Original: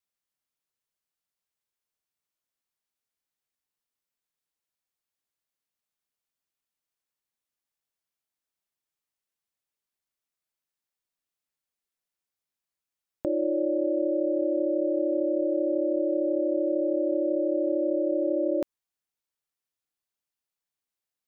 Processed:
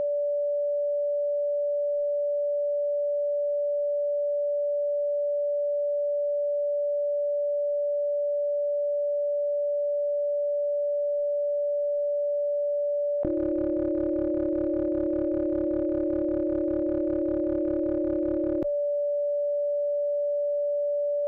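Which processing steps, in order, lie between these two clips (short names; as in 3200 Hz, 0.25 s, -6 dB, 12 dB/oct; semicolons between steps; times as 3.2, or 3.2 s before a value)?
overloaded stage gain 20.5 dB; tilt -4 dB/oct; whine 580 Hz -42 dBFS; spectral noise reduction 8 dB; fast leveller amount 100%; gain -6.5 dB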